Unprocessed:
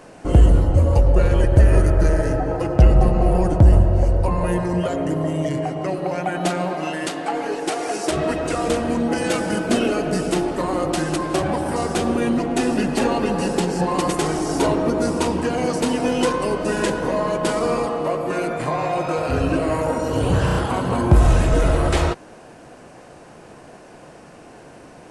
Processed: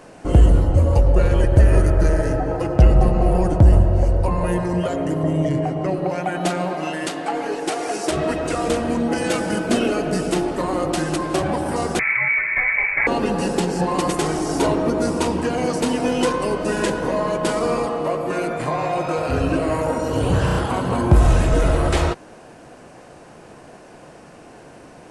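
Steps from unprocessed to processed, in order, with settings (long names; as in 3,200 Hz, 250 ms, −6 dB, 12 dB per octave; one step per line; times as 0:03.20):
0:05.23–0:06.10: spectral tilt −1.5 dB per octave
0:11.99–0:13.07: voice inversion scrambler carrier 2,500 Hz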